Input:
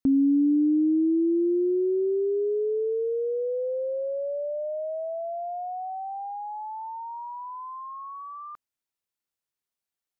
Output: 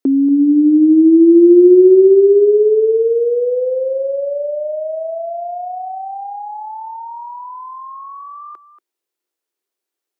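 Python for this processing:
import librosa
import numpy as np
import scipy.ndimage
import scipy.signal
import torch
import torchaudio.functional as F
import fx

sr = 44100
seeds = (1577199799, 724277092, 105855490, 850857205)

y = fx.highpass_res(x, sr, hz=360.0, q=3.9)
y = y + 10.0 ** (-13.0 / 20.0) * np.pad(y, (int(234 * sr / 1000.0), 0))[:len(y)]
y = y * 10.0 ** (5.5 / 20.0)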